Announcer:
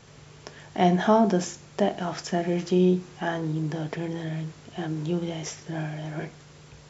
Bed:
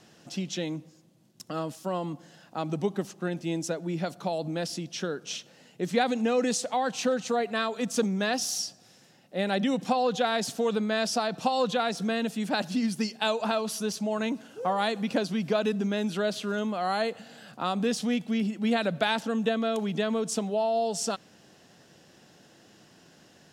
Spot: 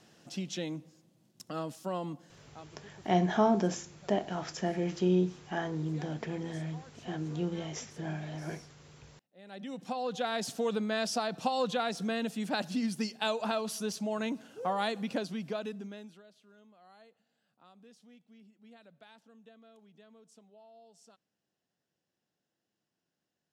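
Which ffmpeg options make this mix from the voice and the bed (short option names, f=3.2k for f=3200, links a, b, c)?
-filter_complex "[0:a]adelay=2300,volume=-6dB[a];[1:a]volume=17.5dB,afade=t=out:st=2.12:d=0.57:silence=0.0794328,afade=t=in:st=9.41:d=1.13:silence=0.0794328,afade=t=out:st=14.86:d=1.37:silence=0.0501187[b];[a][b]amix=inputs=2:normalize=0"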